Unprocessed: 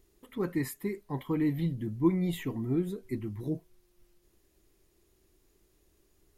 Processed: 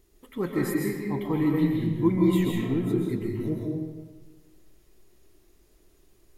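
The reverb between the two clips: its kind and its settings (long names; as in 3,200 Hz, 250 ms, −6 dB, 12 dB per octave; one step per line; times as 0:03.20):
comb and all-pass reverb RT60 1.4 s, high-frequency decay 0.7×, pre-delay 95 ms, DRR −1.5 dB
level +2.5 dB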